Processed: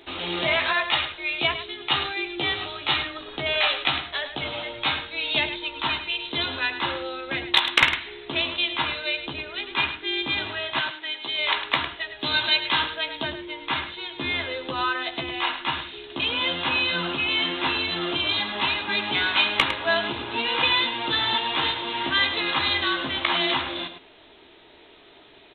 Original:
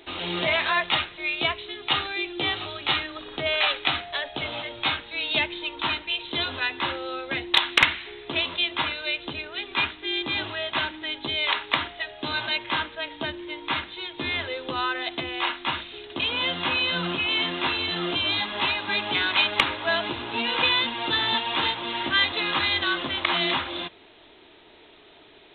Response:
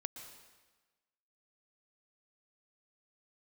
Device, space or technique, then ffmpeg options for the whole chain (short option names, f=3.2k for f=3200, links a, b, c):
slapback doubling: -filter_complex "[0:a]asettb=1/sr,asplit=3[a][b][c];[a]atrim=end=10.804[d];[b]atrim=start=10.8:end=11.39,asetpts=PTS-STARTPTS,afade=t=in:d=0.004:c=qsin,afade=t=out:st=0.586:d=0.004:c=qsin,highpass=f=780:p=1[e];[c]atrim=start=11.386[f];[d][e]acrossfade=d=0.004:c1=hsin:c2=qsin[g];[g][f]acrossfade=d=0.004:c1=qsin:c2=hsin,asplit=3[h][i][j];[h]afade=t=out:st=12.19:d=0.02[k];[i]aemphasis=mode=production:type=75kf,afade=t=in:st=12.19:d=0.02,afade=t=out:st=13.23:d=0.02[l];[j]afade=t=in:st=13.23:d=0.02[m];[k][l][m]amix=inputs=3:normalize=0,asplit=3[n][o][p];[o]adelay=15,volume=-9dB[q];[p]adelay=105,volume=-10dB[r];[n][q][r]amix=inputs=3:normalize=0,asettb=1/sr,asplit=3[s][t][u];[s]atrim=end=0.734[v];[t]atrim=start=0.73:end=1.31,asetpts=PTS-STARTPTS,afade=t=in:d=0.004:c=qsin,afade=t=out:st=0.576:d=0.004:c=qsin,equalizer=f=180:w=1.1:g=-7[w];[u]atrim=start=1.306[x];[v][w]acrossfade=d=0.004:c1=hsin:c2=qsin[y];[y][x]acrossfade=d=0.004:c1=qsin:c2=hsin"